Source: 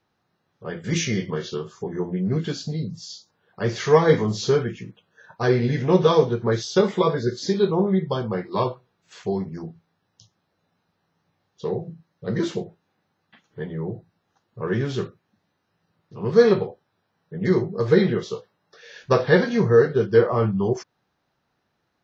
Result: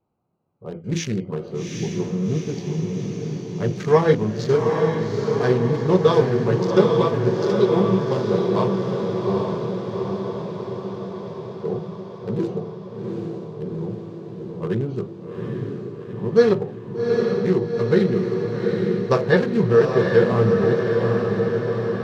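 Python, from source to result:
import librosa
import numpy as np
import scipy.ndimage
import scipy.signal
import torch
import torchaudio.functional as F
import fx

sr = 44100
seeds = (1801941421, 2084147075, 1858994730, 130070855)

y = fx.wiener(x, sr, points=25)
y = fx.echo_diffused(y, sr, ms=796, feedback_pct=66, wet_db=-3.0)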